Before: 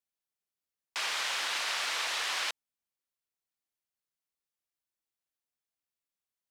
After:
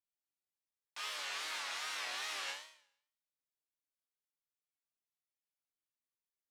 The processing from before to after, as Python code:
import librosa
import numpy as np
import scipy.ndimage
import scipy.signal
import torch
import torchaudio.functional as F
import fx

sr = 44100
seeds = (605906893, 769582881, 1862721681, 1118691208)

y = fx.resonator_bank(x, sr, root=43, chord='sus4', decay_s=0.63)
y = fx.wow_flutter(y, sr, seeds[0], rate_hz=2.1, depth_cents=120.0)
y = F.gain(torch.from_numpy(y), 8.0).numpy()